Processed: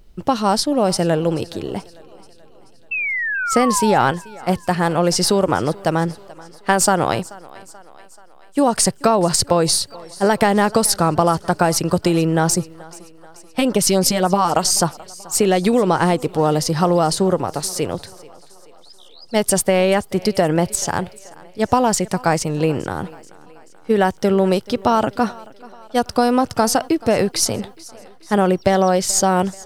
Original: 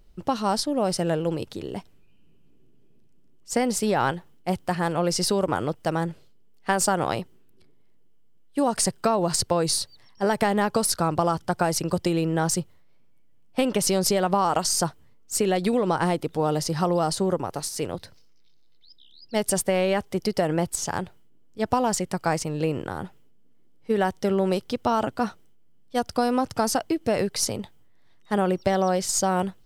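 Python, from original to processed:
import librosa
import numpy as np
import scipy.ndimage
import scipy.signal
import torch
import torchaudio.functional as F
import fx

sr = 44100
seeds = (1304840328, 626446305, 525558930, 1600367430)

y = fx.spec_paint(x, sr, seeds[0], shape='fall', start_s=2.91, length_s=1.11, low_hz=750.0, high_hz=2700.0, level_db=-29.0)
y = fx.filter_lfo_notch(y, sr, shape='sine', hz=3.5, low_hz=370.0, high_hz=3200.0, q=1.2, at=(12.5, 14.57))
y = fx.echo_thinned(y, sr, ms=433, feedback_pct=58, hz=250.0, wet_db=-21)
y = y * librosa.db_to_amplitude(7.0)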